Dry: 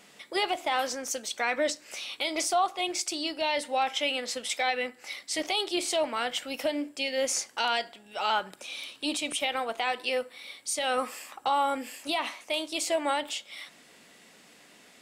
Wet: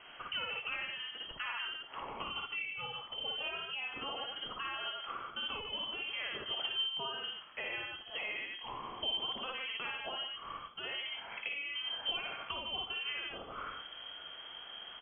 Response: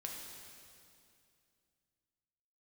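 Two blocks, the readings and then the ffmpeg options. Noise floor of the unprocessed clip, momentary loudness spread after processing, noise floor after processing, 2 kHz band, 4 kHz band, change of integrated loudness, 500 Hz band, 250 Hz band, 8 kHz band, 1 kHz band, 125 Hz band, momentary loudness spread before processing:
−56 dBFS, 8 LU, −51 dBFS, −6.5 dB, −3.5 dB, −8.5 dB, −17.5 dB, −18.5 dB, below −40 dB, −14.0 dB, can't be measured, 8 LU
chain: -filter_complex "[0:a]aecho=1:1:55.39|145.8:1|0.501,acompressor=threshold=-37dB:ratio=12,asubboost=boost=8.5:cutoff=180,asplit=2[link_01][link_02];[1:a]atrim=start_sample=2205,atrim=end_sample=3528[link_03];[link_02][link_03]afir=irnorm=-1:irlink=0,volume=0dB[link_04];[link_01][link_04]amix=inputs=2:normalize=0,lowpass=frequency=2900:width_type=q:width=0.5098,lowpass=frequency=2900:width_type=q:width=0.6013,lowpass=frequency=2900:width_type=q:width=0.9,lowpass=frequency=2900:width_type=q:width=2.563,afreqshift=-3400,volume=-2dB"

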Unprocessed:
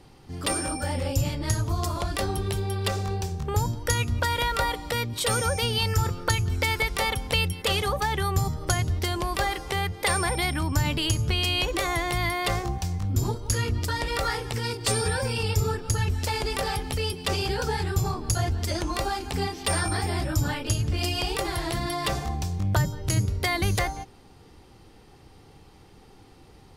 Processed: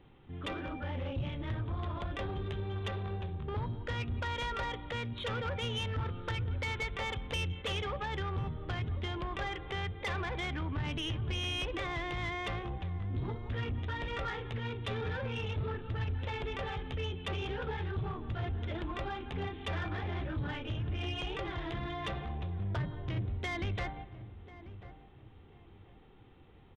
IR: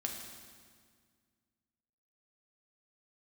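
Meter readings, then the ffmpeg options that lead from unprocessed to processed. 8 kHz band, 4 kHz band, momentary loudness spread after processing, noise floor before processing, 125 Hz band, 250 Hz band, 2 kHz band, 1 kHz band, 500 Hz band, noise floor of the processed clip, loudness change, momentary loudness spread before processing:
−26.0 dB, −11.5 dB, 4 LU, −52 dBFS, −9.0 dB, −9.0 dB, −10.0 dB, −11.0 dB, −10.0 dB, −56 dBFS, −10.5 dB, 4 LU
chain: -filter_complex "[0:a]asplit=2[link_01][link_02];[1:a]atrim=start_sample=2205[link_03];[link_02][link_03]afir=irnorm=-1:irlink=0,volume=-16.5dB[link_04];[link_01][link_04]amix=inputs=2:normalize=0,aresample=8000,aresample=44100,asoftclip=type=tanh:threshold=-21.5dB,equalizer=frequency=760:width_type=o:width=0.76:gain=-3,asplit=2[link_05][link_06];[link_06]adelay=1041,lowpass=frequency=1000:poles=1,volume=-13.5dB,asplit=2[link_07][link_08];[link_08]adelay=1041,lowpass=frequency=1000:poles=1,volume=0.32,asplit=2[link_09][link_10];[link_10]adelay=1041,lowpass=frequency=1000:poles=1,volume=0.32[link_11];[link_05][link_07][link_09][link_11]amix=inputs=4:normalize=0,volume=-8dB"

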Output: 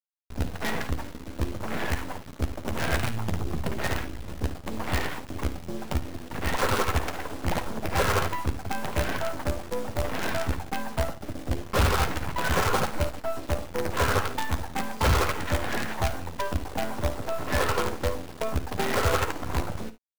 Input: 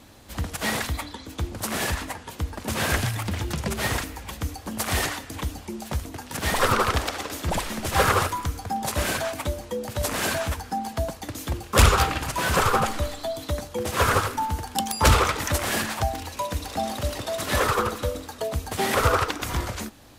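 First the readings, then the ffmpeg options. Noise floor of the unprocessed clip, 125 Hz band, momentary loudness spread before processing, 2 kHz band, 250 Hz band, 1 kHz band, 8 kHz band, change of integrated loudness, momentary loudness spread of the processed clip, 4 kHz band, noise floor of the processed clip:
−43 dBFS, −2.5 dB, 12 LU, −3.5 dB, −1.5 dB, −4.5 dB, −8.0 dB, −3.5 dB, 9 LU, −5.5 dB, −43 dBFS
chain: -filter_complex "[0:a]aemphasis=mode=reproduction:type=cd,bandreject=frequency=1200:width=11,afwtdn=0.0224,highshelf=frequency=6200:gain=-12,asplit=2[link_01][link_02];[link_02]acompressor=threshold=-31dB:ratio=12,volume=-2.5dB[link_03];[link_01][link_03]amix=inputs=2:normalize=0,acrusher=bits=4:dc=4:mix=0:aa=0.000001,asoftclip=type=tanh:threshold=-17.5dB,asplit=2[link_04][link_05];[link_05]adelay=12,volume=-10.5dB[link_06];[link_04][link_06]amix=inputs=2:normalize=0,asplit=2[link_07][link_08];[link_08]aecho=0:1:54|72:0.188|0.133[link_09];[link_07][link_09]amix=inputs=2:normalize=0"

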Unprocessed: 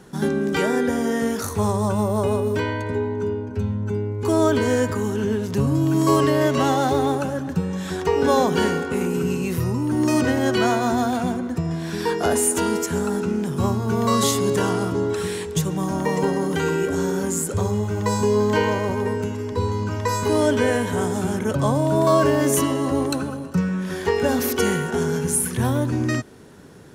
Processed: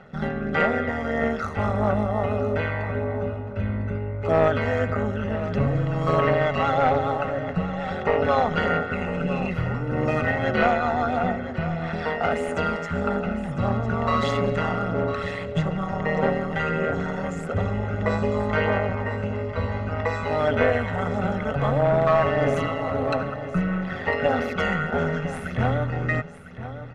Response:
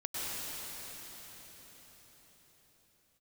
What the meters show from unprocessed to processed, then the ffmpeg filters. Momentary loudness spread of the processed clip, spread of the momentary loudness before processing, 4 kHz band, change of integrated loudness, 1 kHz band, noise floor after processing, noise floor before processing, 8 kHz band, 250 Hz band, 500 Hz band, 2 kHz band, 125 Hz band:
7 LU, 6 LU, −6.5 dB, −2.5 dB, 0.0 dB, −33 dBFS, −31 dBFS, below −20 dB, −6.0 dB, −2.5 dB, +2.0 dB, −1.5 dB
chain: -filter_complex "[0:a]tremolo=f=160:d=0.788,lowshelf=frequency=83:gain=-11.5,aphaser=in_gain=1:out_gain=1:delay=1.1:decay=0.33:speed=1.6:type=sinusoidal,aecho=1:1:1.5:0.73,aeval=exprs='clip(val(0),-1,0.15)':channel_layout=same,lowpass=frequency=2200:width_type=q:width=1.5,asplit=2[link_01][link_02];[link_02]aecho=0:1:1003:0.237[link_03];[link_01][link_03]amix=inputs=2:normalize=0"

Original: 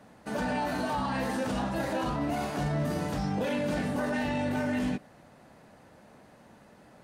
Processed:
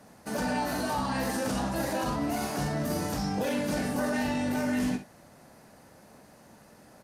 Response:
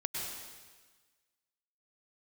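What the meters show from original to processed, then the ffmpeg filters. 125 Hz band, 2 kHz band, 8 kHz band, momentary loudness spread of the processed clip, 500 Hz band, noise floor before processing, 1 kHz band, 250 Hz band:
−1.5 dB, +0.5 dB, +8.0 dB, 2 LU, 0.0 dB, −56 dBFS, +0.5 dB, +1.0 dB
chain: -filter_complex "[0:a]aexciter=amount=1.9:drive=7.3:freq=4700,asplit=2[link_01][link_02];[link_02]aecho=0:1:45|64:0.266|0.224[link_03];[link_01][link_03]amix=inputs=2:normalize=0,aresample=32000,aresample=44100"

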